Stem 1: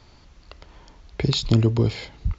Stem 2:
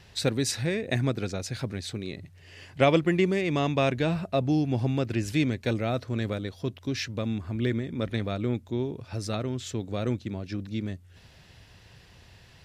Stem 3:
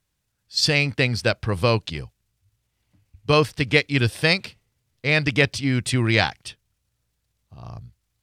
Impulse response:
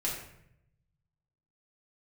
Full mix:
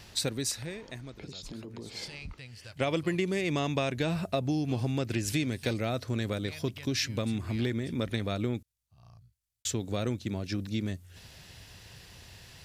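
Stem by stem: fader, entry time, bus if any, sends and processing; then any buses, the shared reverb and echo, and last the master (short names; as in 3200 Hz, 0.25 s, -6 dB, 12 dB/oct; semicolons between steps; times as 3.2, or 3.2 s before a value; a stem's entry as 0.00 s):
-4.0 dB, 0.00 s, no bus, no send, resonant low shelf 150 Hz -8 dB, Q 1.5; compressor, threshold -29 dBFS, peak gain reduction 13.5 dB; limiter -30 dBFS, peak gain reduction 13.5 dB
+1.0 dB, 0.00 s, muted 8.63–9.65, bus A, no send, auto duck -21 dB, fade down 1.15 s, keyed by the first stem
-14.0 dB, 1.40 s, bus A, no send, harmonic-percussive split percussive -8 dB; bell 320 Hz -7 dB 2.1 oct; compressor 2:1, threshold -36 dBFS, peak gain reduction 10 dB
bus A: 0.0 dB, high shelf 5100 Hz +11.5 dB; compressor 5:1, threshold -26 dBFS, peak gain reduction 9 dB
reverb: off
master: dry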